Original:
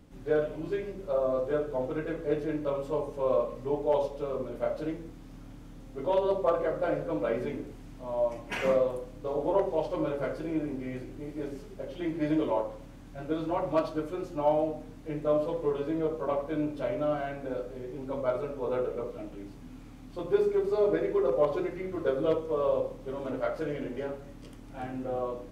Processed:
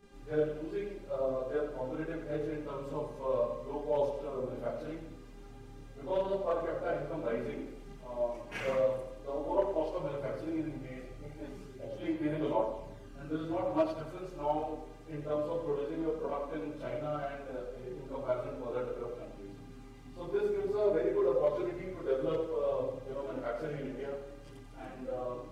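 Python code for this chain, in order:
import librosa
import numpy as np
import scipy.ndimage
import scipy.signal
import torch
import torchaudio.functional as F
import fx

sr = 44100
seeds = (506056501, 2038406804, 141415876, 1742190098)

y = fx.dmg_buzz(x, sr, base_hz=400.0, harmonics=24, level_db=-54.0, tilt_db=-7, odd_only=False)
y = fx.chorus_voices(y, sr, voices=4, hz=0.3, base_ms=29, depth_ms=4.8, mix_pct=70)
y = fx.echo_feedback(y, sr, ms=89, feedback_pct=49, wet_db=-10.0)
y = y * librosa.db_to_amplitude(-3.0)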